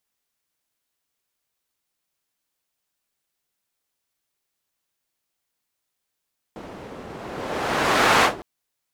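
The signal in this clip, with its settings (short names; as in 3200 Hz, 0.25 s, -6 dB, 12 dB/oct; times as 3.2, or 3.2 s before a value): whoosh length 1.86 s, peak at 1.67, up 1.28 s, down 0.15 s, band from 420 Hz, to 1200 Hz, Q 0.7, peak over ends 21 dB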